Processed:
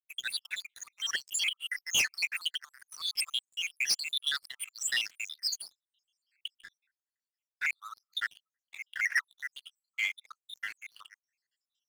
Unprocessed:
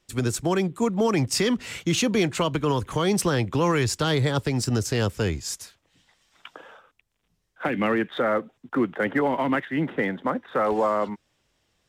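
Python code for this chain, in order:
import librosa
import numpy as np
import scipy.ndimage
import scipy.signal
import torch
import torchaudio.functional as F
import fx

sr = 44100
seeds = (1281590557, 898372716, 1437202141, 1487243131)

y = fx.spec_dropout(x, sr, seeds[0], share_pct=82)
y = scipy.signal.sosfilt(scipy.signal.butter(8, 1700.0, 'highpass', fs=sr, output='sos'), y)
y = fx.high_shelf(y, sr, hz=8000.0, db=-8.5)
y = fx.leveller(y, sr, passes=3)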